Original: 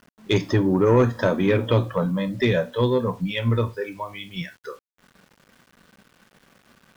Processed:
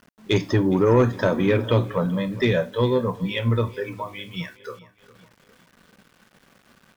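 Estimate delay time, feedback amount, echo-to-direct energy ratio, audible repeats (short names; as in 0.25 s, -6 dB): 0.411 s, 49%, -19.0 dB, 3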